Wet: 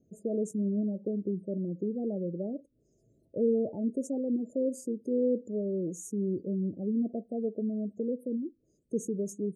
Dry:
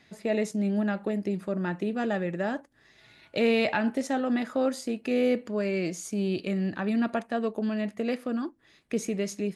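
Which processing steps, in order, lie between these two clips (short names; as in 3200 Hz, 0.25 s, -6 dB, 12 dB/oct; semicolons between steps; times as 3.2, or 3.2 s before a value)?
elliptic band-stop 510–7000 Hz, stop band 70 dB; spectral gate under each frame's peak -25 dB strong; gain -2 dB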